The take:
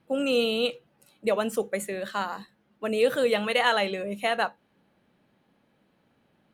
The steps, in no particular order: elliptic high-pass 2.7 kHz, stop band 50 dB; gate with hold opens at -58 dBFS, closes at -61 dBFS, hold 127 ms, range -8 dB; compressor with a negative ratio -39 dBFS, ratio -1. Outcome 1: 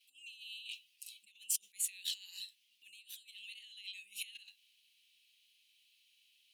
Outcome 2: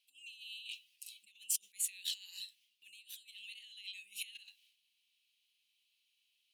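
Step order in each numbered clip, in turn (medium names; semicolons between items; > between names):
gate with hold > compressor with a negative ratio > elliptic high-pass; compressor with a negative ratio > elliptic high-pass > gate with hold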